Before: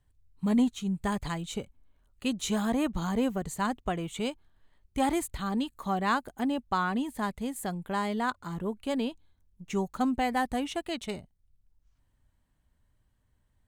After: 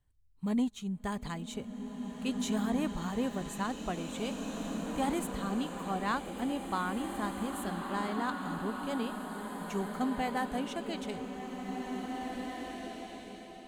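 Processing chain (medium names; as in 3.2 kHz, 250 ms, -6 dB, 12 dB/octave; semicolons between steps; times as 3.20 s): swelling reverb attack 2160 ms, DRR 2.5 dB; trim -5.5 dB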